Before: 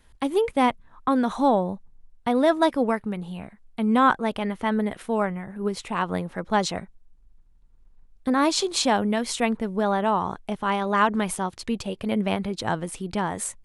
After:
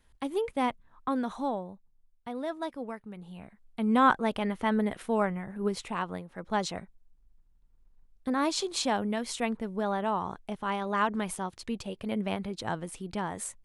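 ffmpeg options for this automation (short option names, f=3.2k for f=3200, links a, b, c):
-af "volume=11.5dB,afade=t=out:st=1.16:d=0.53:silence=0.446684,afade=t=in:st=3.07:d=1.04:silence=0.251189,afade=t=out:st=5.75:d=0.52:silence=0.266073,afade=t=in:st=6.27:d=0.21:silence=0.421697"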